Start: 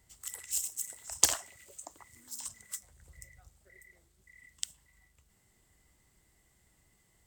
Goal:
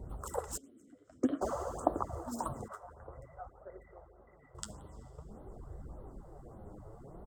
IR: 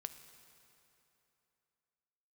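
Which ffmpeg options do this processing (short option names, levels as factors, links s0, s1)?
-filter_complex "[0:a]firequalizer=gain_entry='entry(100,0);entry(280,8);entry(510,12);entry(920,4);entry(1300,2);entry(2100,-30);entry(4900,-23);entry(15000,-26)':delay=0.05:min_phase=1,aecho=1:1:176:0.0708,asplit=2[s0][s1];[1:a]atrim=start_sample=2205,lowshelf=f=120:g=9.5[s2];[s1][s2]afir=irnorm=-1:irlink=0,volume=2[s3];[s0][s3]amix=inputs=2:normalize=0,flanger=delay=0.5:depth=9.4:regen=37:speed=0.52:shape=sinusoidal,asplit=3[s4][s5][s6];[s4]afade=t=out:st=0.56:d=0.02[s7];[s5]asplit=3[s8][s9][s10];[s8]bandpass=f=270:t=q:w=8,volume=1[s11];[s9]bandpass=f=2290:t=q:w=8,volume=0.501[s12];[s10]bandpass=f=3010:t=q:w=8,volume=0.355[s13];[s11][s12][s13]amix=inputs=3:normalize=0,afade=t=in:st=0.56:d=0.02,afade=t=out:st=1.41:d=0.02[s14];[s6]afade=t=in:st=1.41:d=0.02[s15];[s7][s14][s15]amix=inputs=3:normalize=0,asettb=1/sr,asplit=3[s16][s17][s18];[s16]atrim=end=2.684[s19];[s17]atrim=start=2.68:end=4.55,asetpts=PTS-STARTPTS,afade=t=in:d=0.004:c=qsin,afade=t=out:st=1.866:d=0.004:c=qsin,acrossover=split=560 2500:gain=0.178 1 0.126[s20][s21][s22];[s20][s21][s22]amix=inputs=3:normalize=0[s23];[s18]atrim=start=4.546[s24];[s19][s23]acrossfade=d=0.004:c1=hsin:c2=qsin[s25];[s25][s24]acrossfade=d=0.004:c1=qsin:c2=hsin,afftfilt=real='re*(1-between(b*sr/1024,210*pow(6400/210,0.5+0.5*sin(2*PI*1.7*pts/sr))/1.41,210*pow(6400/210,0.5+0.5*sin(2*PI*1.7*pts/sr))*1.41))':imag='im*(1-between(b*sr/1024,210*pow(6400/210,0.5+0.5*sin(2*PI*1.7*pts/sr))/1.41,210*pow(6400/210,0.5+0.5*sin(2*PI*1.7*pts/sr))*1.41))':win_size=1024:overlap=0.75,volume=4.47"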